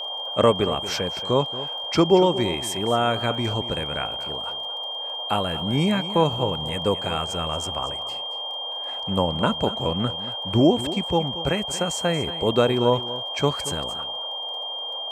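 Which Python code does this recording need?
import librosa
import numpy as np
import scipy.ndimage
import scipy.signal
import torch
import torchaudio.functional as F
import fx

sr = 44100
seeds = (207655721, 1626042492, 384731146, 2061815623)

y = fx.fix_declick_ar(x, sr, threshold=6.5)
y = fx.notch(y, sr, hz=3200.0, q=30.0)
y = fx.noise_reduce(y, sr, print_start_s=4.54, print_end_s=5.04, reduce_db=30.0)
y = fx.fix_echo_inverse(y, sr, delay_ms=230, level_db=-14.0)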